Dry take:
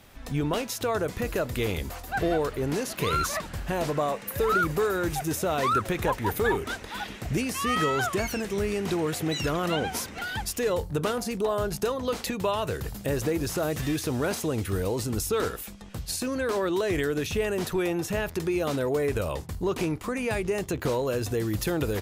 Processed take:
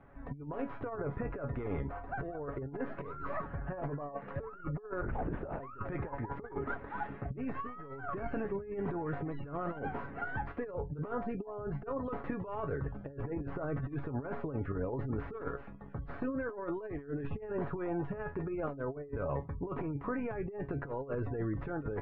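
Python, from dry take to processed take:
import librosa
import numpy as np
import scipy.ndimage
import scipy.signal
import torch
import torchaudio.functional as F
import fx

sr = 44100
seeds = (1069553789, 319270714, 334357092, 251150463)

y = fx.tracing_dist(x, sr, depth_ms=0.28)
y = fx.comb_fb(y, sr, f0_hz=140.0, decay_s=0.19, harmonics='all', damping=0.0, mix_pct=80)
y = fx.spec_gate(y, sr, threshold_db=-30, keep='strong')
y = fx.lpc_vocoder(y, sr, seeds[0], excitation='whisper', order=8, at=(5.01, 5.6))
y = fx.over_compress(y, sr, threshold_db=-37.0, ratio=-0.5)
y = scipy.signal.sosfilt(scipy.signal.butter(4, 1600.0, 'lowpass', fs=sr, output='sos'), y)
y = y * 10.0 ** (1.0 / 20.0)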